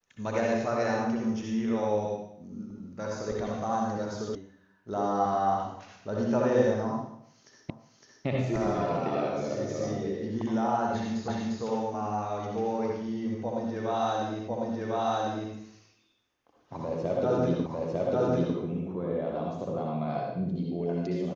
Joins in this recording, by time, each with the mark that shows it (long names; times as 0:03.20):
0:04.35: cut off before it has died away
0:07.70: the same again, the last 0.56 s
0:11.28: the same again, the last 0.35 s
0:14.48: the same again, the last 1.05 s
0:17.66: the same again, the last 0.9 s